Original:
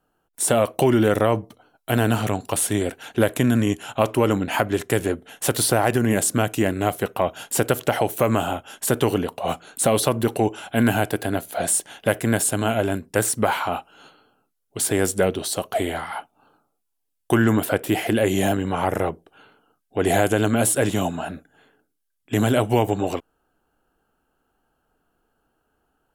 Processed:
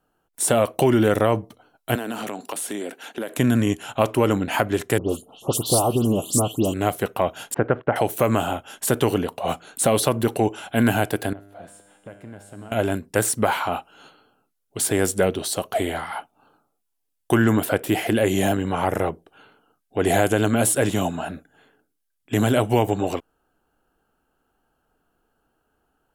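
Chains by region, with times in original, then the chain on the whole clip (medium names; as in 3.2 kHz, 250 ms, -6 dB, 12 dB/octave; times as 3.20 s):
1.95–3.38 s: high-pass 200 Hz 24 dB/octave + compression 4:1, threshold -26 dBFS
4.98–6.74 s: elliptic band-stop 1.2–2.9 kHz + phase dispersion highs, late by 121 ms, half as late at 2.9 kHz
7.54–7.96 s: low-pass 1.9 kHz 24 dB/octave + gate -39 dBFS, range -15 dB
11.33–12.72 s: low-pass 1.1 kHz 6 dB/octave + compression 3:1, threshold -23 dBFS + feedback comb 100 Hz, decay 1.4 s, mix 80%
whole clip: none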